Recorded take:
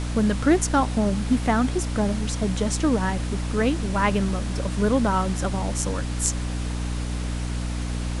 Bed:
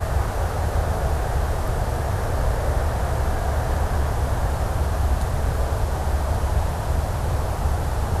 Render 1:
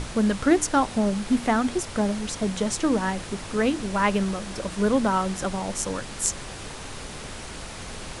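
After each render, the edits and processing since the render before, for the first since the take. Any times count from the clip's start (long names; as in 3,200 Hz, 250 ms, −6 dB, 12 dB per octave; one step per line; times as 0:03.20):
mains-hum notches 60/120/180/240/300 Hz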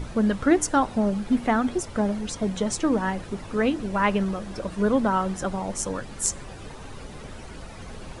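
broadband denoise 11 dB, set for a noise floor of −38 dBFS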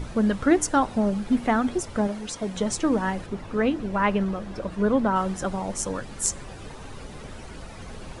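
0:02.07–0:02.55: low-shelf EQ 210 Hz −9.5 dB
0:03.26–0:05.16: high-shelf EQ 5,100 Hz −9.5 dB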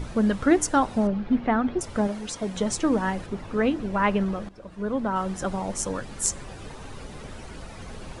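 0:01.07–0:01.81: high-frequency loss of the air 250 metres
0:04.49–0:05.51: fade in, from −16.5 dB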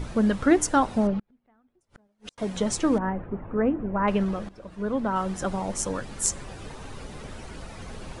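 0:01.19–0:02.38: gate with flip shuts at −25 dBFS, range −41 dB
0:02.98–0:04.08: Gaussian smoothing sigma 4.9 samples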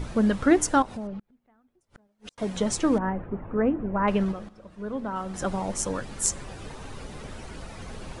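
0:00.82–0:02.36: downward compressor 2.5 to 1, threshold −37 dBFS
0:04.32–0:05.34: tuned comb filter 53 Hz, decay 1.5 s, mix 50%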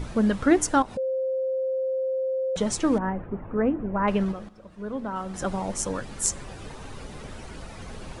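0:00.97–0:02.56: beep over 525 Hz −23.5 dBFS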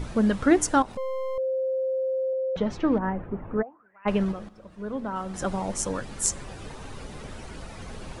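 0:00.92–0:01.38: gain on one half-wave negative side −12 dB
0:02.33–0:03.03: high-frequency loss of the air 270 metres
0:03.61–0:04.05: resonant band-pass 650 Hz → 2,800 Hz, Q 12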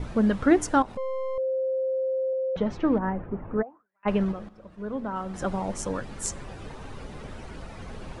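noise gate with hold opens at −41 dBFS
high-shelf EQ 4,500 Hz −9 dB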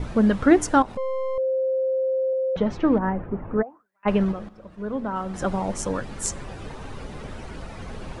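level +3.5 dB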